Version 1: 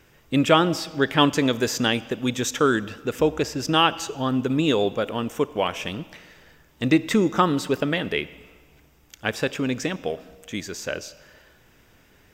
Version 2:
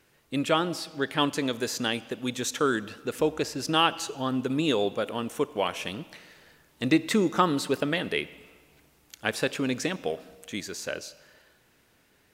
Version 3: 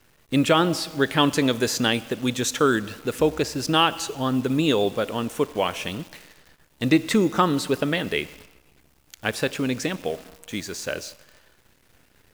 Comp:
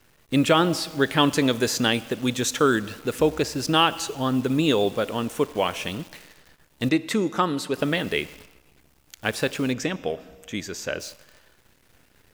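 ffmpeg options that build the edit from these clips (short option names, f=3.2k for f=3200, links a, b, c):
-filter_complex "[2:a]asplit=3[a][b][c];[a]atrim=end=6.892[d];[1:a]atrim=start=6.888:end=7.782[e];[b]atrim=start=7.778:end=9.732[f];[0:a]atrim=start=9.728:end=11.002[g];[c]atrim=start=10.998[h];[d][e]acrossfade=d=0.004:c1=hsin:c2=hsin[i];[i][f]acrossfade=d=0.004:c1=hsin:c2=hsin[j];[j][g]acrossfade=d=0.004:c1=hsin:c2=hsin[k];[k][h]acrossfade=d=0.004:c1=hsin:c2=hsin"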